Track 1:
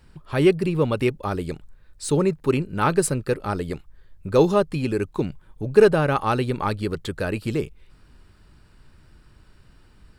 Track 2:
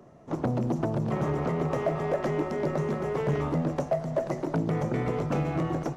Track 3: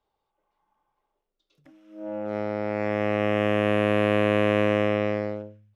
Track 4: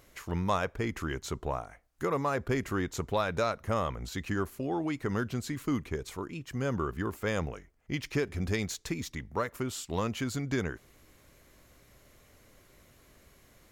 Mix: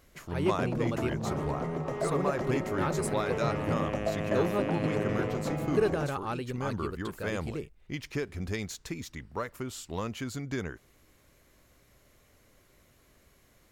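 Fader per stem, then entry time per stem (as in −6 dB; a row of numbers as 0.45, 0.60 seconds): −12.5, −5.5, −13.0, −3.0 decibels; 0.00, 0.15, 0.30, 0.00 seconds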